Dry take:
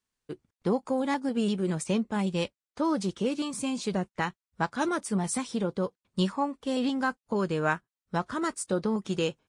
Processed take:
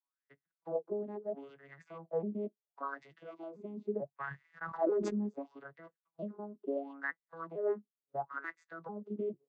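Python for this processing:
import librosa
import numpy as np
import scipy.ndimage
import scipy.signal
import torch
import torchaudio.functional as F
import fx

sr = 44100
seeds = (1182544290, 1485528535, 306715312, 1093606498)

p1 = fx.vocoder_arp(x, sr, chord='minor triad', root=49, every_ms=444)
p2 = fx.peak_eq(p1, sr, hz=710.0, db=5.0, octaves=0.92, at=(1.9, 3.31))
p3 = fx.over_compress(p2, sr, threshold_db=-30.0, ratio=-0.5)
p4 = p2 + (p3 * librosa.db_to_amplitude(-1.5))
p5 = fx.wah_lfo(p4, sr, hz=0.73, low_hz=310.0, high_hz=2000.0, q=9.9)
p6 = fx.sustainer(p5, sr, db_per_s=34.0, at=(4.26, 5.27), fade=0.02)
y = p6 * librosa.db_to_amplitude(5.5)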